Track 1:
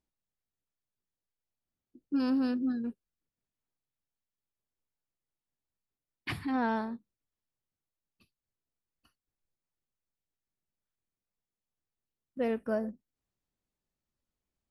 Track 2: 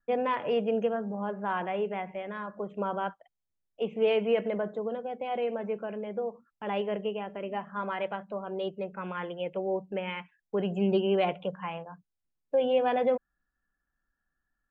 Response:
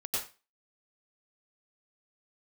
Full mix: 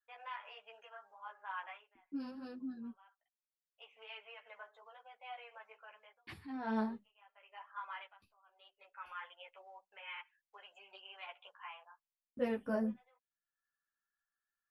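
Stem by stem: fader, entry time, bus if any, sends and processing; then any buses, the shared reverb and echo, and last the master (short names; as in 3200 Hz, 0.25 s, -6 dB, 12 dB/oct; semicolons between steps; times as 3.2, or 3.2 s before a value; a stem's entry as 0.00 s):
6.57 s -11 dB -> 6.8 s 0 dB, 0.00 s, no send, gate with hold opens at -53 dBFS
-5.0 dB, 0.00 s, no send, compressor, threshold -27 dBFS, peak gain reduction 7 dB; HPF 930 Hz 24 dB/oct; auto duck -22 dB, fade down 0.20 s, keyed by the first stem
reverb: off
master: ensemble effect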